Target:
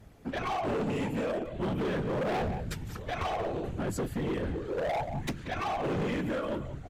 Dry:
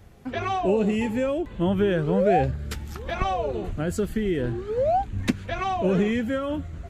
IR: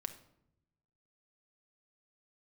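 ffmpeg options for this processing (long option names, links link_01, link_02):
-filter_complex "[0:a]afftfilt=real='hypot(re,im)*cos(2*PI*random(0))':imag='hypot(re,im)*sin(2*PI*random(1))':win_size=512:overlap=0.75,asplit=2[link_01][link_02];[link_02]adelay=180,highpass=300,lowpass=3400,asoftclip=type=hard:threshold=-24dB,volume=-12dB[link_03];[link_01][link_03]amix=inputs=2:normalize=0,volume=30dB,asoftclip=hard,volume=-30dB,volume=2dB"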